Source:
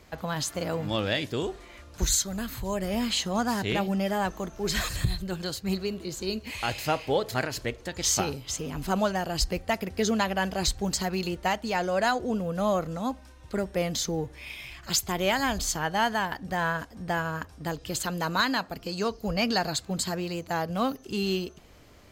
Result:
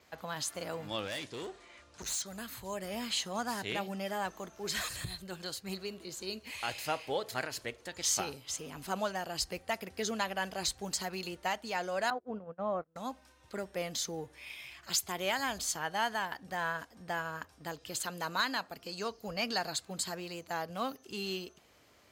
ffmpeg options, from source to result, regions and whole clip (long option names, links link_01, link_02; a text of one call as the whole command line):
ffmpeg -i in.wav -filter_complex "[0:a]asettb=1/sr,asplit=3[link_01][link_02][link_03];[link_01]atrim=end=1.074[link_04];[link_02]atrim=start=1.07:end=2.26,asetpts=PTS-STARTPTS,afade=type=in:duration=0.004:curve=qsin,afade=type=out:start_time=1.186:duration=0.004:curve=qsin,lowpass=frequency=9200:width=0.5412,lowpass=frequency=9200:width=1.3066,asoftclip=type=hard:threshold=-28dB[link_05];[link_03]atrim=start=2.256[link_06];[link_04][link_05]acrossfade=duration=0.004:curve1=hsin:curve2=qsin[link_07];[link_07][link_06]acrossfade=duration=0.004:curve1=qsin:curve2=hsin,asettb=1/sr,asplit=3[link_08][link_09][link_10];[link_08]atrim=end=12.104[link_11];[link_09]atrim=start=12.1:end=12.96,asetpts=PTS-STARTPTS,afade=type=in:duration=0.004:curve=qsin,afade=type=out:start_time=0.856:duration=0.004:curve=qsin,agate=range=-30dB:threshold=-30dB:ratio=16:release=100:detection=peak,lowpass=1400[link_12];[link_10]atrim=start=12.956[link_13];[link_11][link_12]acrossfade=duration=0.004:curve1=hsin:curve2=qsin[link_14];[link_14][link_13]acrossfade=duration=0.004:curve1=qsin:curve2=hsin,adynamicequalizer=threshold=0.002:dfrequency=9500:dqfactor=4.2:tfrequency=9500:tqfactor=4.2:attack=5:release=100:ratio=0.375:range=3:mode=boostabove:tftype=bell,highpass=65,lowshelf=frequency=340:gain=-10,volume=-5.5dB" out.wav